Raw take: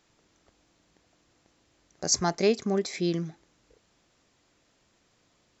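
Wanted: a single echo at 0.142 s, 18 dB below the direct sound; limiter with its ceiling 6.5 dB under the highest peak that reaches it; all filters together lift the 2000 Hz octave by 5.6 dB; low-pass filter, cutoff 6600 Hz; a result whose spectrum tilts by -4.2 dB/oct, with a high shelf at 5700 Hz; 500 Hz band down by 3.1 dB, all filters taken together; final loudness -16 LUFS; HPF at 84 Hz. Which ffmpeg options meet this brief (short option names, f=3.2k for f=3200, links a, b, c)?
-af "highpass=84,lowpass=6.6k,equalizer=f=500:t=o:g=-4.5,equalizer=f=2k:t=o:g=8.5,highshelf=f=5.7k:g=-8,alimiter=limit=-17.5dB:level=0:latency=1,aecho=1:1:142:0.126,volume=15dB"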